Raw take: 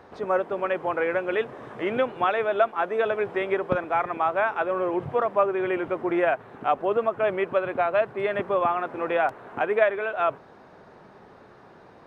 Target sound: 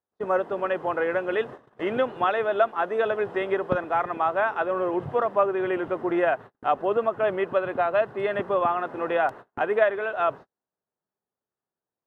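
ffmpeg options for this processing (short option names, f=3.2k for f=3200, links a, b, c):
-af "bandreject=f=2.3k:w=7.5,agate=range=-43dB:threshold=-37dB:ratio=16:detection=peak"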